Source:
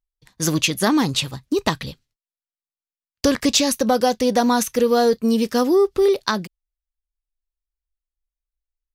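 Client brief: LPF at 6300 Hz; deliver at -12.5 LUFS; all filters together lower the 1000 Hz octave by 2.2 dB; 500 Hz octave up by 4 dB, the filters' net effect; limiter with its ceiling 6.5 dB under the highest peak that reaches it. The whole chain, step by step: LPF 6300 Hz; bell 500 Hz +6 dB; bell 1000 Hz -6.5 dB; gain +7 dB; limiter -2.5 dBFS

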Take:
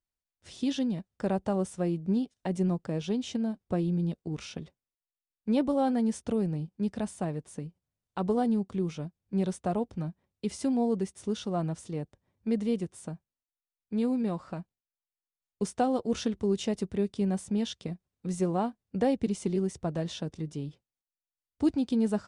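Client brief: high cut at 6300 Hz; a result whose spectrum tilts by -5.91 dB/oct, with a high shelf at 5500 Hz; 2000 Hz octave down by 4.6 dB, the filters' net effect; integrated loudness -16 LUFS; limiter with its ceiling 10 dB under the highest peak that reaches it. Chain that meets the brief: LPF 6300 Hz; bell 2000 Hz -5.5 dB; high shelf 5500 Hz -5.5 dB; gain +19.5 dB; limiter -6.5 dBFS

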